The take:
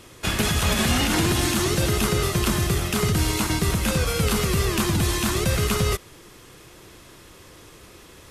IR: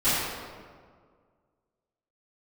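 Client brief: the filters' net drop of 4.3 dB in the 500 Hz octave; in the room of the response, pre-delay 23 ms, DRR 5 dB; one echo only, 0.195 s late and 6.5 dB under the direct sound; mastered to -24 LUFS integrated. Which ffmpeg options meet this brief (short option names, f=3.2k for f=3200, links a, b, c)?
-filter_complex "[0:a]equalizer=f=500:t=o:g=-6,aecho=1:1:195:0.473,asplit=2[a][b];[1:a]atrim=start_sample=2205,adelay=23[c];[b][c]afir=irnorm=-1:irlink=0,volume=-20.5dB[d];[a][d]amix=inputs=2:normalize=0,volume=-3dB"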